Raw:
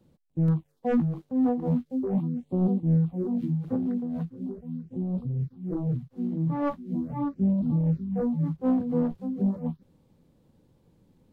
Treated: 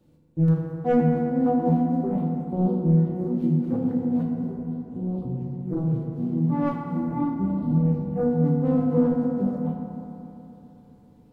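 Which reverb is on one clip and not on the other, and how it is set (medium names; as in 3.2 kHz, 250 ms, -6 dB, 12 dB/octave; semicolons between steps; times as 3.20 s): FDN reverb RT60 3.3 s, high-frequency decay 0.35×, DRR -2 dB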